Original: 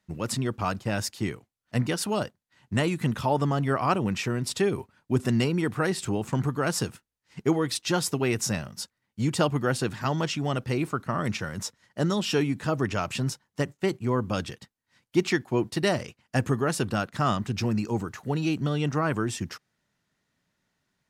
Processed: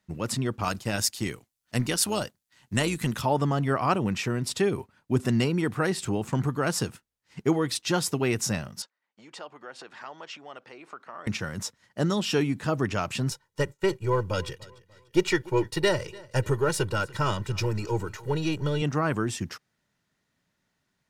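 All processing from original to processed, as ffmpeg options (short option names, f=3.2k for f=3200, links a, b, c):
-filter_complex "[0:a]asettb=1/sr,asplit=3[a][b][c];[a]atrim=end=0.634[d];[b]atrim=start=0.63:end=3.22,asetpts=PTS-STARTPTS,afade=t=in:d=0.004:c=qsin,afade=t=out:st=2.586:d=0.004:c=qsin,highshelf=f=3.3k:g=11,tremolo=f=120:d=0.4[e];[c]atrim=start=3.216[f];[d][e]acrossfade=d=0.004:c1=hsin:c2=qsin[g];[g][f]acrossfade=d=0.004:c1=qsin:c2=hsin,asettb=1/sr,asplit=3[h][i][j];[h]atrim=end=8.824[k];[i]atrim=start=8.82:end=11.27,asetpts=PTS-STARTPTS,afade=t=in:d=0.004:c=qsin,afade=t=out:st=2.446:d=0.004:c=qsin,highshelf=f=3.1k:g=-8.5,acompressor=threshold=-34dB:ratio=4:attack=3.2:release=140:knee=1:detection=peak,highpass=590,lowpass=6.4k[l];[j]atrim=start=11.266[m];[k][l]acrossfade=d=0.004:c1=hsin:c2=qsin[n];[n][m]acrossfade=d=0.004:c1=qsin:c2=hsin,asettb=1/sr,asplit=3[o][p][q];[o]atrim=end=13.314[r];[p]atrim=start=13.31:end=18.82,asetpts=PTS-STARTPTS,afade=t=in:d=0.004:c=qsin,afade=t=out:st=5.506:d=0.004:c=qsin,aeval=exprs='if(lt(val(0),0),0.708*val(0),val(0))':c=same,aecho=1:1:2.1:0.89,atrim=end_sample=242991,aecho=1:1:294|588|882:0.0794|0.0318|0.0127,atrim=end_sample=242991[s];[q]atrim=start=18.816[t];[r][s]acrossfade=d=0.004:c1=hsin:c2=qsin[u];[u][t]acrossfade=d=0.004:c1=qsin:c2=hsin"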